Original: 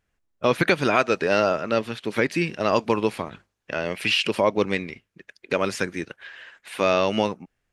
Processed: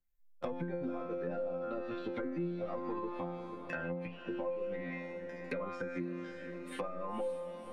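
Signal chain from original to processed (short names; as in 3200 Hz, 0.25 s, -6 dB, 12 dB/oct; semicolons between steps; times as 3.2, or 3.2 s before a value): per-bin expansion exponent 1.5; sample leveller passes 2; limiter -12.5 dBFS, peak gain reduction 5.5 dB; resonator bank F3 fifth, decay 0.69 s; compressor 3:1, threshold -49 dBFS, peak gain reduction 14.5 dB; treble ducked by the level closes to 640 Hz, closed at -45.5 dBFS; diffused feedback echo 0.538 s, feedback 53%, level -13.5 dB; three-band squash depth 70%; gain +13 dB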